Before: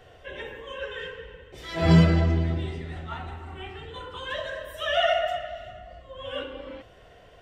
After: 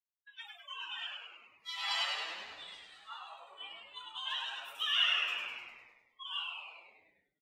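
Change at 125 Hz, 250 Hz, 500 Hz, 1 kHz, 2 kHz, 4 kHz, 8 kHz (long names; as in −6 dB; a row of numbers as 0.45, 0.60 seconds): below −40 dB, below −40 dB, −28.5 dB, −11.5 dB, −4.5 dB, +1.0 dB, can't be measured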